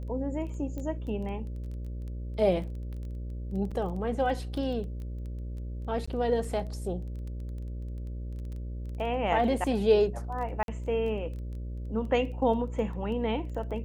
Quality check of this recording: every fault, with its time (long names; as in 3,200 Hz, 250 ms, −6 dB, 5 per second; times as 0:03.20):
mains buzz 60 Hz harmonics 10 −36 dBFS
surface crackle 11 per second −38 dBFS
0:00.78: click −26 dBFS
0:03.71–0:03.72: drop-out 5.5 ms
0:06.06–0:06.08: drop-out 15 ms
0:10.63–0:10.68: drop-out 52 ms